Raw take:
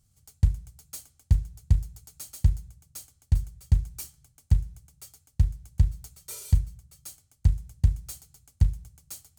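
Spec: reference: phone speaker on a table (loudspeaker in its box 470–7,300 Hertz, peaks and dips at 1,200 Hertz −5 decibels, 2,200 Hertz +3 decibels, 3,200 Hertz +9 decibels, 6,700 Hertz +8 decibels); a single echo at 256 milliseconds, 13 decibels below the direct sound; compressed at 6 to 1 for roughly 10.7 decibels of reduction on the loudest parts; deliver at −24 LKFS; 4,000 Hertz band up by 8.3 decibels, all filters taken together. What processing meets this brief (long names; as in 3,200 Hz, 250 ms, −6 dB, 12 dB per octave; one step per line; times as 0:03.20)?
parametric band 4,000 Hz +6 dB
downward compressor 6 to 1, threshold −26 dBFS
loudspeaker in its box 470–7,300 Hz, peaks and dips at 1,200 Hz −5 dB, 2,200 Hz +3 dB, 3,200 Hz +9 dB, 6,700 Hz +8 dB
single-tap delay 256 ms −13 dB
level +20 dB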